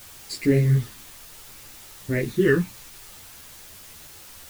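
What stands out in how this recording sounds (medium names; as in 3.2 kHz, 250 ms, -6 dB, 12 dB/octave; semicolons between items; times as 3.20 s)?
phasing stages 12, 0.61 Hz, lowest notch 520–1100 Hz; a quantiser's noise floor 8-bit, dither triangular; a shimmering, thickened sound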